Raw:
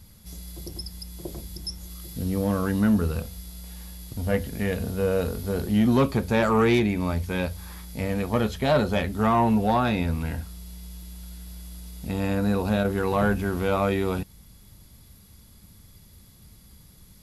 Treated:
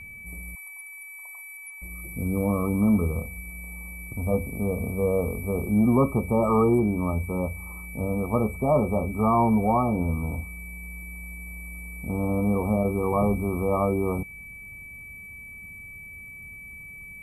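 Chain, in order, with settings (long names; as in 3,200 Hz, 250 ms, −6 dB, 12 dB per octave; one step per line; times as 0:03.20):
brick-wall band-stop 1,300–7,800 Hz
steady tone 2,300 Hz −40 dBFS
0:00.55–0:01.82: elliptic high-pass filter 900 Hz, stop band 70 dB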